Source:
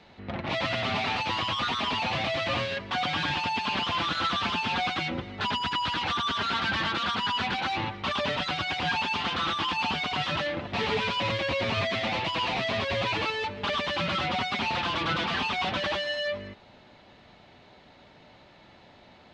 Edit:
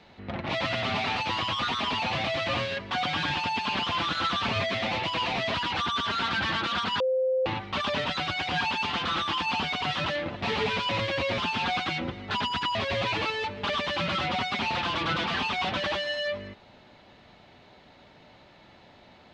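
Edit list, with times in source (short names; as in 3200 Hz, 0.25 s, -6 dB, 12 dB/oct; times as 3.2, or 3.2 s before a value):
4.48–5.85 swap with 11.69–12.75
7.31–7.77 bleep 519 Hz -22 dBFS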